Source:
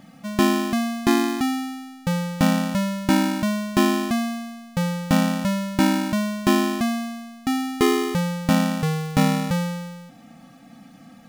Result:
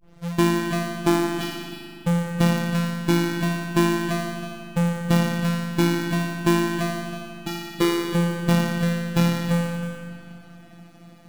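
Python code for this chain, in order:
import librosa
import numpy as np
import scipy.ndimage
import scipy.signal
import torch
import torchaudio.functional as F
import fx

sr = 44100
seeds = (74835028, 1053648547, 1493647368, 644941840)

p1 = fx.tape_start_head(x, sr, length_s=0.33)
p2 = fx.highpass(p1, sr, hz=60.0, slope=6)
p3 = fx.sample_hold(p2, sr, seeds[0], rate_hz=2600.0, jitter_pct=0)
p4 = p2 + F.gain(torch.from_numpy(p3), -7.0).numpy()
p5 = fx.robotise(p4, sr, hz=171.0)
p6 = p5 + fx.echo_single(p5, sr, ms=320, db=-12.0, dry=0)
p7 = fx.rev_spring(p6, sr, rt60_s=3.6, pass_ms=(40,), chirp_ms=30, drr_db=5.0)
y = F.gain(torch.from_numpy(p7), -1.0).numpy()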